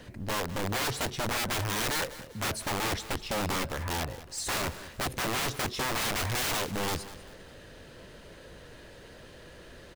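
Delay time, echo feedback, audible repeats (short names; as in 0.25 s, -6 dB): 0.197 s, 35%, 3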